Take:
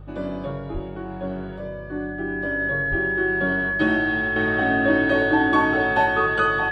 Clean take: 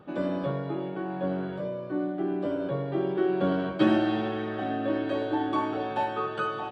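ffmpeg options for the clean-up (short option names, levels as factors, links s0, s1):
-filter_complex "[0:a]bandreject=f=49.2:t=h:w=4,bandreject=f=98.4:t=h:w=4,bandreject=f=147.6:t=h:w=4,bandreject=f=1700:w=30,asplit=3[s0][s1][s2];[s0]afade=t=out:st=0.73:d=0.02[s3];[s1]highpass=f=140:w=0.5412,highpass=f=140:w=1.3066,afade=t=in:st=0.73:d=0.02,afade=t=out:st=0.85:d=0.02[s4];[s2]afade=t=in:st=0.85:d=0.02[s5];[s3][s4][s5]amix=inputs=3:normalize=0,asplit=3[s6][s7][s8];[s6]afade=t=out:st=2.9:d=0.02[s9];[s7]highpass=f=140:w=0.5412,highpass=f=140:w=1.3066,afade=t=in:st=2.9:d=0.02,afade=t=out:st=3.02:d=0.02[s10];[s8]afade=t=in:st=3.02:d=0.02[s11];[s9][s10][s11]amix=inputs=3:normalize=0,asetnsamples=n=441:p=0,asendcmd='4.36 volume volume -8dB',volume=1"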